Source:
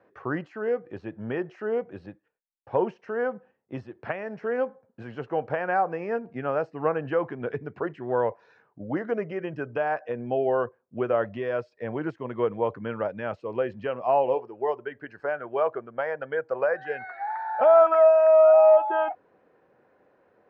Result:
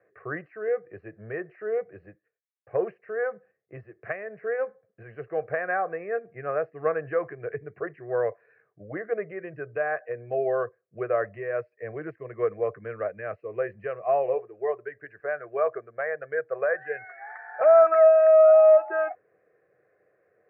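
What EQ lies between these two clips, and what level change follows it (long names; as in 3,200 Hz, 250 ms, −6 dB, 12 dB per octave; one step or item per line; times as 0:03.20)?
dynamic equaliser 1,100 Hz, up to +6 dB, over −33 dBFS, Q 0.72
loudspeaker in its box 130–2,500 Hz, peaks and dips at 170 Hz −4 dB, 360 Hz −4 dB, 550 Hz −7 dB, 830 Hz −8 dB, 1,400 Hz −10 dB
phaser with its sweep stopped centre 930 Hz, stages 6
+3.0 dB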